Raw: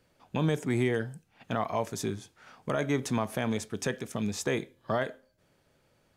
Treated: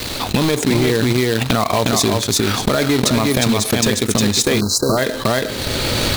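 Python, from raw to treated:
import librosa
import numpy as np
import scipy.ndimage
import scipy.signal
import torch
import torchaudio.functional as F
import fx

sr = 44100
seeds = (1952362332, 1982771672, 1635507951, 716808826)

y = fx.recorder_agc(x, sr, target_db=-21.5, rise_db_per_s=30.0, max_gain_db=30)
y = y + 10.0 ** (-3.5 / 20.0) * np.pad(y, (int(358 * sr / 1000.0), 0))[:len(y)]
y = fx.fold_sine(y, sr, drive_db=7, ceiling_db=-9.5)
y = fx.spec_gate(y, sr, threshold_db=-30, keep='strong')
y = fx.peak_eq(y, sr, hz=750.0, db=-6.0, octaves=1.7)
y = fx.quant_companded(y, sr, bits=4)
y = fx.graphic_eq_31(y, sr, hz=(160, 1600, 4000), db=(-10, -3, 10))
y = fx.transient(y, sr, attack_db=5, sustain_db=-9)
y = fx.spec_erase(y, sr, start_s=4.6, length_s=0.37, low_hz=1600.0, high_hz=3900.0)
y = fx.env_flatten(y, sr, amount_pct=70)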